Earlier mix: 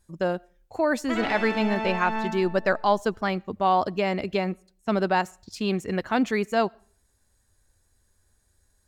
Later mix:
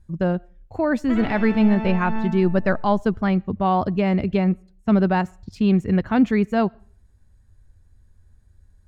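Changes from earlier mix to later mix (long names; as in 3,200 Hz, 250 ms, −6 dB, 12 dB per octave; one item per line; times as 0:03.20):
background −3.0 dB
master: add bass and treble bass +15 dB, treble −10 dB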